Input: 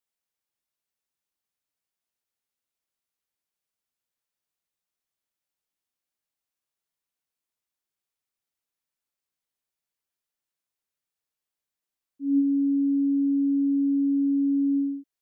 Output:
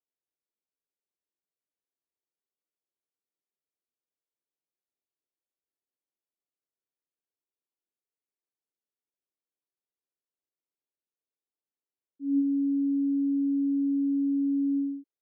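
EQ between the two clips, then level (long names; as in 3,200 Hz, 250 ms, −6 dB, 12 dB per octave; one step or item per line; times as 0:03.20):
resonant band-pass 380 Hz, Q 1.7
0.0 dB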